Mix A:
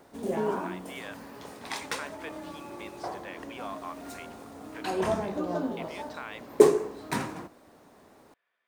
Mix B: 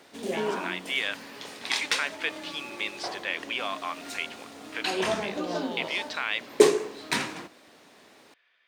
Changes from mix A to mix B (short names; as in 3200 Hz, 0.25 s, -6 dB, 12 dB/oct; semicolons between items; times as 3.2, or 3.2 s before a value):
speech +5.5 dB; master: add weighting filter D